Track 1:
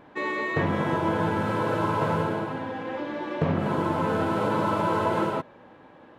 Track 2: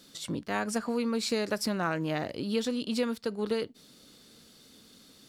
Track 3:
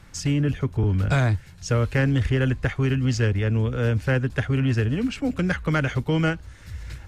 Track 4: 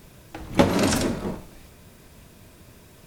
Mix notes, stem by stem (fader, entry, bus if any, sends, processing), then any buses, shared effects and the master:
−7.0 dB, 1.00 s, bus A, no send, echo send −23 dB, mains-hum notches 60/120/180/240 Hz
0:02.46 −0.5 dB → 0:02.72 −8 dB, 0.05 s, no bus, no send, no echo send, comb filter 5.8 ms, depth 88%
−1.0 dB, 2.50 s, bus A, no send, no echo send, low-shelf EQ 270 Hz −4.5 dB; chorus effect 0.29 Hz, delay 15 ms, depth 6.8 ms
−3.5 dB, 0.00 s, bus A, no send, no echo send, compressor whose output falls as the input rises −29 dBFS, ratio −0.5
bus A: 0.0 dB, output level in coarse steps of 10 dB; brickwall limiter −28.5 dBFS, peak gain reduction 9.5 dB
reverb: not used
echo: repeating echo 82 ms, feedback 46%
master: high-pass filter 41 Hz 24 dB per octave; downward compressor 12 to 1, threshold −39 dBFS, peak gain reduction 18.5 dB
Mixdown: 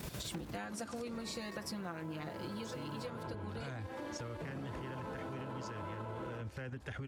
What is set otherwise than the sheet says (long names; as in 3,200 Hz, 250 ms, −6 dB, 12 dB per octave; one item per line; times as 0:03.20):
stem 1 −7.0 dB → −1.0 dB
stem 3: missing chorus effect 0.29 Hz, delay 15 ms, depth 6.8 ms
stem 4 −3.5 dB → +3.0 dB